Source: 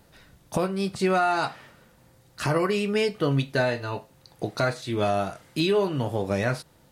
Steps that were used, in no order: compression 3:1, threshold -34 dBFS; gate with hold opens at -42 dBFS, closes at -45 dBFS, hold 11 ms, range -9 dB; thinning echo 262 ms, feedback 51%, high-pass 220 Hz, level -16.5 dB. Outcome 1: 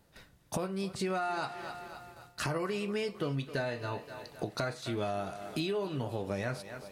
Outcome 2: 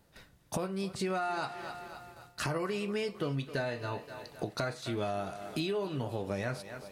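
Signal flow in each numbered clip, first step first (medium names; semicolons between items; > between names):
thinning echo > gate with hold > compression; thinning echo > compression > gate with hold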